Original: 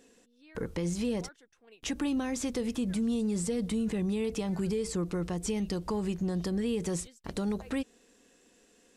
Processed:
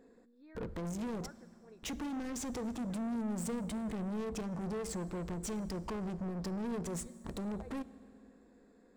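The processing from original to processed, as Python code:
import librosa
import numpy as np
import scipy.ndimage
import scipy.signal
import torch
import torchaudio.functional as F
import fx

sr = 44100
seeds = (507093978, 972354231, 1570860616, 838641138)

y = fx.wiener(x, sr, points=15)
y = 10.0 ** (-37.0 / 20.0) * np.tanh(y / 10.0 ** (-37.0 / 20.0))
y = fx.rev_fdn(y, sr, rt60_s=2.7, lf_ratio=1.2, hf_ratio=0.8, size_ms=26.0, drr_db=16.0)
y = y * librosa.db_to_amplitude(1.0)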